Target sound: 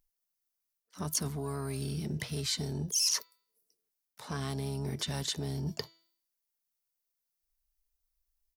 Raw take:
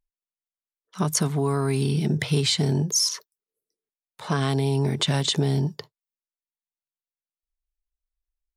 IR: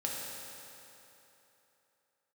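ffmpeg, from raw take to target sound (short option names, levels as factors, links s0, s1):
-filter_complex "[0:a]bandreject=f=330.2:t=h:w=4,bandreject=f=660.4:t=h:w=4,bandreject=f=990.6:t=h:w=4,bandreject=f=1320.8:t=h:w=4,bandreject=f=1651:t=h:w=4,bandreject=f=1981.2:t=h:w=4,bandreject=f=2311.4:t=h:w=4,bandreject=f=2641.6:t=h:w=4,bandreject=f=2971.8:t=h:w=4,bandreject=f=3302:t=h:w=4,bandreject=f=3632.2:t=h:w=4,bandreject=f=3962.4:t=h:w=4,bandreject=f=4292.6:t=h:w=4,bandreject=f=4622.8:t=h:w=4,areverse,acompressor=threshold=0.0178:ratio=8,areverse,asplit=3[s0][s1][s2];[s1]asetrate=22050,aresample=44100,atempo=2,volume=0.2[s3];[s2]asetrate=66075,aresample=44100,atempo=0.66742,volume=0.141[s4];[s0][s3][s4]amix=inputs=3:normalize=0,aexciter=amount=2.3:drive=4.4:freq=4600,volume=1.19"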